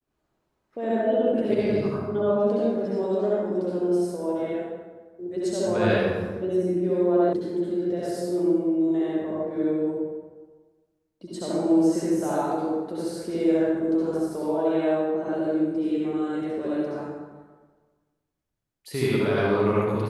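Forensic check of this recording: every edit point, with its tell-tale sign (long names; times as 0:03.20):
0:07.33: cut off before it has died away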